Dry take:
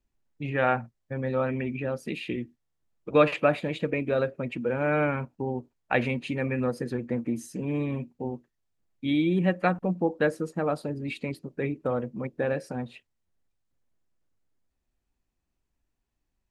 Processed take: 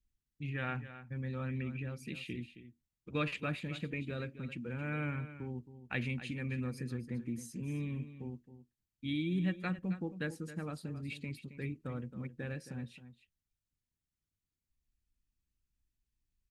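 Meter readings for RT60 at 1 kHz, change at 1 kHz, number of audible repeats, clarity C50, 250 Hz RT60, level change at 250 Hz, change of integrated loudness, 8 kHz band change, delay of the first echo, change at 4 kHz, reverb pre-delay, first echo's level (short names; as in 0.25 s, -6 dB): none, -16.5 dB, 1, none, none, -9.5 dB, -11.0 dB, -5.0 dB, 0.269 s, -6.5 dB, none, -13.0 dB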